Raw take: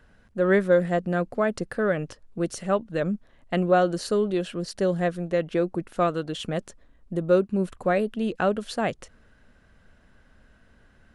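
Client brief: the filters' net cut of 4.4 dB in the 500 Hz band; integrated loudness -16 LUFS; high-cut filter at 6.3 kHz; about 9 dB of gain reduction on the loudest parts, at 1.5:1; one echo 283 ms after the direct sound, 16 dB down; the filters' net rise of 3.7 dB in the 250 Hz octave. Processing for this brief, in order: low-pass 6.3 kHz; peaking EQ 250 Hz +8.5 dB; peaking EQ 500 Hz -8.5 dB; compression 1.5:1, threshold -43 dBFS; delay 283 ms -16 dB; trim +18 dB

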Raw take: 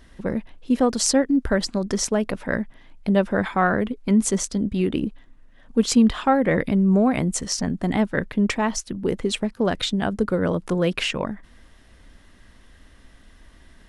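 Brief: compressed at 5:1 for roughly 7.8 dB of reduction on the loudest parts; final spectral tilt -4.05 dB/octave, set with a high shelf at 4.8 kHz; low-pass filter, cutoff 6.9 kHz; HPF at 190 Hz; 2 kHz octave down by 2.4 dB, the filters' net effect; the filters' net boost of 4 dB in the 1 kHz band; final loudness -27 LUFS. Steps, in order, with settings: high-pass 190 Hz; low-pass 6.9 kHz; peaking EQ 1 kHz +7 dB; peaking EQ 2 kHz -7 dB; treble shelf 4.8 kHz +6 dB; compression 5:1, threshold -21 dBFS

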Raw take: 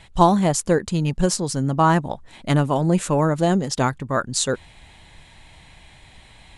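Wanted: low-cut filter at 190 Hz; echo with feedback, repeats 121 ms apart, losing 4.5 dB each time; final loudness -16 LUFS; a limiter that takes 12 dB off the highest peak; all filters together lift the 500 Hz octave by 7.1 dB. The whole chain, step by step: high-pass 190 Hz; peaking EQ 500 Hz +9 dB; peak limiter -9 dBFS; feedback delay 121 ms, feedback 60%, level -4.5 dB; trim +4 dB

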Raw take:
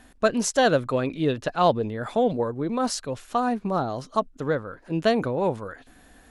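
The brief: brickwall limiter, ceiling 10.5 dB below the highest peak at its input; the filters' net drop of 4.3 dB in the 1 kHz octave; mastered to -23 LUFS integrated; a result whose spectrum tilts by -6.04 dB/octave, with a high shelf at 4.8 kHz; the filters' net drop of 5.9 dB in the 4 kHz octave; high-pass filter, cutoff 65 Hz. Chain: high-pass 65 Hz; peaking EQ 1 kHz -6 dB; peaking EQ 4 kHz -4 dB; treble shelf 4.8 kHz -7 dB; trim +8 dB; peak limiter -13 dBFS

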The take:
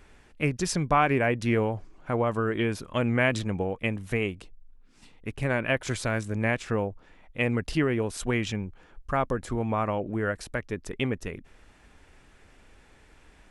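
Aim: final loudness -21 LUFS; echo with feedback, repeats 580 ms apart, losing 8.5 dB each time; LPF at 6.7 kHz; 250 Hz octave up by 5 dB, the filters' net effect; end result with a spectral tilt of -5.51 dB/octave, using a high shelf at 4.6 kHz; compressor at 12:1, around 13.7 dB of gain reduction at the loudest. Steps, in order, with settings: low-pass 6.7 kHz; peaking EQ 250 Hz +6 dB; treble shelf 4.6 kHz +4 dB; compression 12:1, threshold -31 dBFS; feedback delay 580 ms, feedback 38%, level -8.5 dB; trim +15.5 dB

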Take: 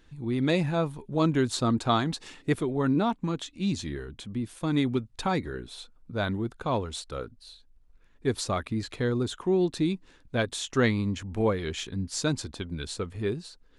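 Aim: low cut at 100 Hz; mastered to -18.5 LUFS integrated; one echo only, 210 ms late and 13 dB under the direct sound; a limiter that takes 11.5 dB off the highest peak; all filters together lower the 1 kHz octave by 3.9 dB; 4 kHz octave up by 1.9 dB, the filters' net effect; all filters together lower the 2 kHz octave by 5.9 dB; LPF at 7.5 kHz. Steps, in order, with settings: high-pass 100 Hz; low-pass 7.5 kHz; peaking EQ 1 kHz -3.5 dB; peaking EQ 2 kHz -7.5 dB; peaking EQ 4 kHz +4.5 dB; peak limiter -22 dBFS; delay 210 ms -13 dB; trim +14.5 dB

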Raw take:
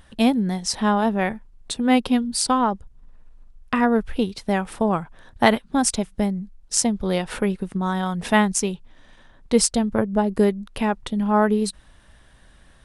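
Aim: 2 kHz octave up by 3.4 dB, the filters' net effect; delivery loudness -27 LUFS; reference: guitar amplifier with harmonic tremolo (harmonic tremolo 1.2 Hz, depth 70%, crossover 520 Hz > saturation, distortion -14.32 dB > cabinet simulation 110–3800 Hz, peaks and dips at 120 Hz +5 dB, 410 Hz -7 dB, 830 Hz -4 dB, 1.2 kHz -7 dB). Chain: peaking EQ 2 kHz +5 dB; harmonic tremolo 1.2 Hz, depth 70%, crossover 520 Hz; saturation -13.5 dBFS; cabinet simulation 110–3800 Hz, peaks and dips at 120 Hz +5 dB, 410 Hz -7 dB, 830 Hz -4 dB, 1.2 kHz -7 dB; trim +1.5 dB

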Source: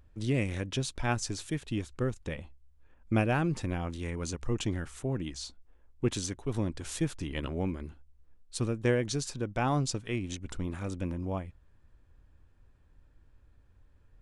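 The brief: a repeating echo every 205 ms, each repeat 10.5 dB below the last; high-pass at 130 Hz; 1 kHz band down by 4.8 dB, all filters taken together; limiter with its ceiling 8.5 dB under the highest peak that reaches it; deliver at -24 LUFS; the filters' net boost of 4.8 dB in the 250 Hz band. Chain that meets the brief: high-pass 130 Hz; peaking EQ 250 Hz +7 dB; peaking EQ 1 kHz -7.5 dB; peak limiter -19 dBFS; feedback delay 205 ms, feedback 30%, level -10.5 dB; trim +8.5 dB

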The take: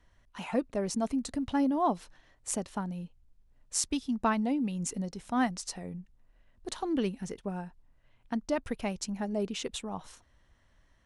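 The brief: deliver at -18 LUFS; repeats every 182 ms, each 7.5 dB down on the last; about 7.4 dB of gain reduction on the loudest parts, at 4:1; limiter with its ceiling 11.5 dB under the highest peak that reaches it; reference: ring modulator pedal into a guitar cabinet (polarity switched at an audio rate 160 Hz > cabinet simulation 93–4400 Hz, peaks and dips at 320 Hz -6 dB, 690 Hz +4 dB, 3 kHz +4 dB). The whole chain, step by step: compression 4:1, threshold -32 dBFS; peak limiter -28.5 dBFS; feedback delay 182 ms, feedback 42%, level -7.5 dB; polarity switched at an audio rate 160 Hz; cabinet simulation 93–4400 Hz, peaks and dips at 320 Hz -6 dB, 690 Hz +4 dB, 3 kHz +4 dB; trim +21 dB

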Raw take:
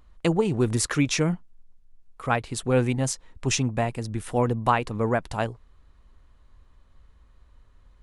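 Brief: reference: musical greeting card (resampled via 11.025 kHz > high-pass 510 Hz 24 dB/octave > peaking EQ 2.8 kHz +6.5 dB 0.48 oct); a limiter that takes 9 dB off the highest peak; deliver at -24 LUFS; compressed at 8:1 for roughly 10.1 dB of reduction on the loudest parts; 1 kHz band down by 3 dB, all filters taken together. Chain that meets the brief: peaking EQ 1 kHz -4 dB; compression 8:1, threshold -28 dBFS; peak limiter -24 dBFS; resampled via 11.025 kHz; high-pass 510 Hz 24 dB/octave; peaking EQ 2.8 kHz +6.5 dB 0.48 oct; trim +16.5 dB

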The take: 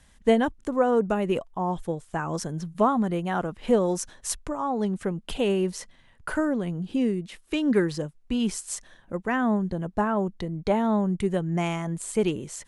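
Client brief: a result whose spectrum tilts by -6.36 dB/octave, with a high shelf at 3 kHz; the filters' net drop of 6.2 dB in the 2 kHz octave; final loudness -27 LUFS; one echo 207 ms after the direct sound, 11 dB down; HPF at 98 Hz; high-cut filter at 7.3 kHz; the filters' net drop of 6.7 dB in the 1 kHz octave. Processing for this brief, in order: high-pass 98 Hz; low-pass 7.3 kHz; peaking EQ 1 kHz -8 dB; peaking EQ 2 kHz -3.5 dB; treble shelf 3 kHz -4.5 dB; delay 207 ms -11 dB; trim +1 dB

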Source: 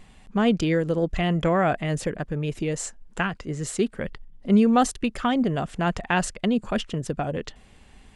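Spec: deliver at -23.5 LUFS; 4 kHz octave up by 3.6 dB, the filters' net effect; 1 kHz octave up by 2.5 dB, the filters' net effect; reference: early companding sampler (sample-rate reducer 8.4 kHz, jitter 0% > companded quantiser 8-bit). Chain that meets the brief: peaking EQ 1 kHz +3.5 dB; peaking EQ 4 kHz +5 dB; sample-rate reducer 8.4 kHz, jitter 0%; companded quantiser 8-bit; trim +0.5 dB

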